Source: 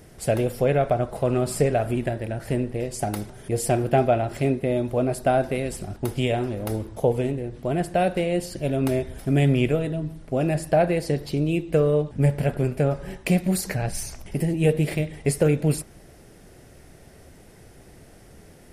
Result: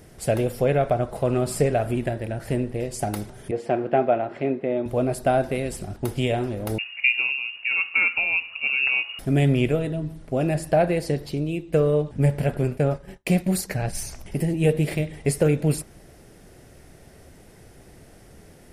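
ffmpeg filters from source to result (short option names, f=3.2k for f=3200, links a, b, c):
-filter_complex "[0:a]asettb=1/sr,asplit=3[a][b][c];[a]atrim=end=3.514[d];[b]atrim=start=3.51:end=4.86,asetpts=PTS-STARTPTS,afade=t=in:d=0.004:c=qsin,afade=t=out:st=1.346:d=0.004:c=qsin,highpass=230,lowpass=2.3k[e];[c]atrim=start=4.856[f];[d][e]acrossfade=d=0.004:c1=hsin:c2=qsin[g];[g][f]acrossfade=d=0.004:c1=qsin:c2=hsin,asettb=1/sr,asplit=3[h][i][j];[h]atrim=end=6.784[k];[i]atrim=start=6.78:end=9.19,asetpts=PTS-STARTPTS,afade=t=in:d=0.004:c=qsin,afade=t=out:st=2.406:d=0.004:c=qsin,lowpass=f=2.5k:t=q:w=0.5098,lowpass=f=2.5k:t=q:w=0.6013,lowpass=f=2.5k:t=q:w=0.9,lowpass=f=2.5k:t=q:w=2.563,afreqshift=-2900[l];[j]atrim=start=9.186[m];[k][l]acrossfade=d=0.004:c1=hsin:c2=qsin[n];[n][m]acrossfade=d=0.004:c1=qsin:c2=hsin,asplit=3[o][p][q];[o]afade=t=out:st=12.76:d=0.02[r];[p]agate=range=-33dB:threshold=-29dB:ratio=3:release=100:detection=peak,afade=t=in:st=12.76:d=0.02,afade=t=out:st=13.94:d=0.02[s];[q]afade=t=in:st=13.94:d=0.02[t];[r][s][t]amix=inputs=3:normalize=0,asplit=2[u][v];[u]atrim=end=11.73,asetpts=PTS-STARTPTS,afade=t=out:st=11.07:d=0.66:silence=0.473151[w];[v]atrim=start=11.73,asetpts=PTS-STARTPTS,afade=t=in:d=0.004:c=hsin:silence=0.473151[x];[w][x]concat=n=2:v=0:a=1"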